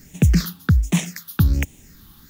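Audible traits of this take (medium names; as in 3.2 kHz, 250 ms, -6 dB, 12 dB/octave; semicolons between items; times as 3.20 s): phasing stages 6, 1.3 Hz, lowest notch 560–1300 Hz; a quantiser's noise floor 10-bit, dither triangular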